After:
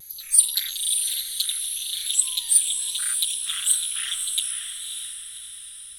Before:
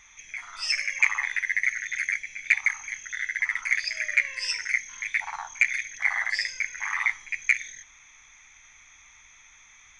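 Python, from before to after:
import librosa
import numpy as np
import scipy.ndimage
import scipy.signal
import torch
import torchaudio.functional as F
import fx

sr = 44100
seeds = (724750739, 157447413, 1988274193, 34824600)

p1 = fx.speed_glide(x, sr, from_pct=182, to_pct=152)
p2 = fx.high_shelf_res(p1, sr, hz=5800.0, db=13.5, q=1.5)
p3 = fx.vibrato(p2, sr, rate_hz=1.7, depth_cents=60.0)
p4 = p3 + fx.echo_diffused(p3, sr, ms=567, feedback_pct=43, wet_db=-6, dry=0)
y = F.gain(torch.from_numpy(p4), -2.0).numpy()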